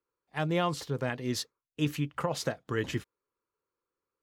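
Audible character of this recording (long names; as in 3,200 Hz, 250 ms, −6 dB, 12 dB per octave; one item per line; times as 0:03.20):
background noise floor −91 dBFS
spectral slope −5.0 dB per octave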